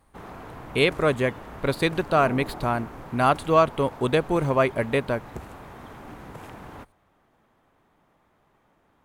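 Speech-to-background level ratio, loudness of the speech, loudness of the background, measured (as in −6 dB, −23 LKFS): 17.0 dB, −24.0 LKFS, −41.0 LKFS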